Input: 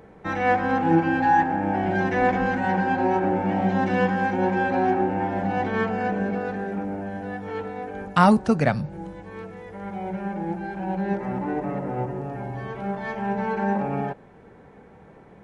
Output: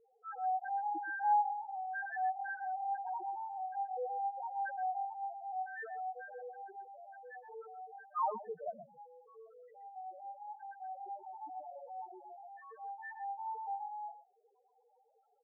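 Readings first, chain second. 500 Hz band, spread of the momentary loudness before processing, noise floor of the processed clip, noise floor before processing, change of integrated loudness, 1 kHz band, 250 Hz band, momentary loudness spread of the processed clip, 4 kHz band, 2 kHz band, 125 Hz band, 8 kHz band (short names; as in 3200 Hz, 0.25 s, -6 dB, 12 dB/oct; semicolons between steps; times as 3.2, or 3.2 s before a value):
-22.0 dB, 13 LU, -72 dBFS, -49 dBFS, -15.5 dB, -11.5 dB, under -40 dB, 16 LU, under -40 dB, -17.0 dB, under -40 dB, n/a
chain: HPF 670 Hz 12 dB/oct; loudest bins only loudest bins 1; air absorption 410 m; on a send: echo 0.124 s -12.5 dB; on the sum: gain -1.5 dB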